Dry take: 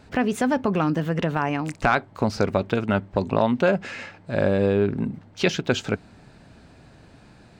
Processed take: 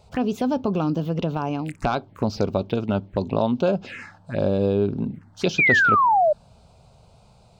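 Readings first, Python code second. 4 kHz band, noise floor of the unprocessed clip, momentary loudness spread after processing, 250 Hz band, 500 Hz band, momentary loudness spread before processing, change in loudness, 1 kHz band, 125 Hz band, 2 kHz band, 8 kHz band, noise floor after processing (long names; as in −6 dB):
−2.0 dB, −51 dBFS, 12 LU, −0.5 dB, 0.0 dB, 9 LU, +1.5 dB, +4.5 dB, 0.0 dB, +6.0 dB, can't be measured, −54 dBFS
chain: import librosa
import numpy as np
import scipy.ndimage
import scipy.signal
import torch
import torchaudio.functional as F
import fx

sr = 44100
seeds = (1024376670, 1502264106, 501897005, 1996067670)

y = fx.env_phaser(x, sr, low_hz=270.0, high_hz=1900.0, full_db=-20.5)
y = fx.spec_paint(y, sr, seeds[0], shape='fall', start_s=5.58, length_s=0.75, low_hz=580.0, high_hz=2500.0, level_db=-17.0)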